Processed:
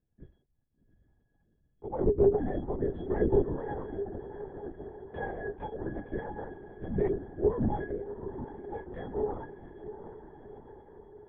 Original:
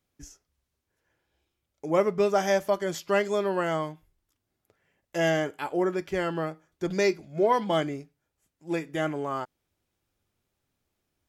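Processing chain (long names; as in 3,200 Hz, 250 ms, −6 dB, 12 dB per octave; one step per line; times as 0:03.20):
adaptive Wiener filter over 9 samples
treble cut that deepens with the level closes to 1,400 Hz, closed at −25 dBFS
low-shelf EQ 180 Hz +11.5 dB
mains-hum notches 50/100/150/200/250/300/350/400 Hz
in parallel at +1.5 dB: brickwall limiter −17.5 dBFS, peak gain reduction 7.5 dB
on the sum: resonances in every octave G#, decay 0.11 s
on a send: feedback delay with all-pass diffusion 747 ms, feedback 60%, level −11.5 dB
on the sum: linear-prediction vocoder at 8 kHz whisper
level −2 dB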